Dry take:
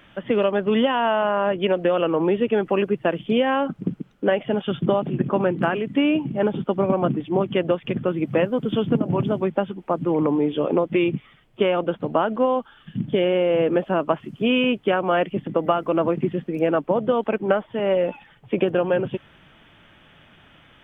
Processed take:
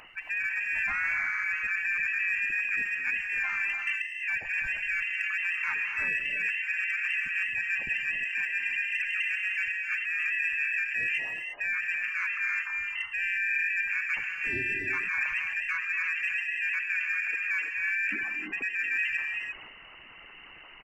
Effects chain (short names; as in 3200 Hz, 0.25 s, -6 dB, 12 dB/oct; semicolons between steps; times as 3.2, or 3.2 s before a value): formant sharpening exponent 2; reverb removal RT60 0.52 s; reverse; compressor 5:1, threshold -32 dBFS, peak gain reduction 15.5 dB; reverse; inverted band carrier 2900 Hz; in parallel at -9 dB: hard clip -29.5 dBFS, distortion -16 dB; on the sum: harmoniser -7 st -8 dB, -5 st -4 dB; non-linear reverb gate 0.37 s rising, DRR 3.5 dB; transient shaper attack -2 dB, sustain +5 dB; gain -2.5 dB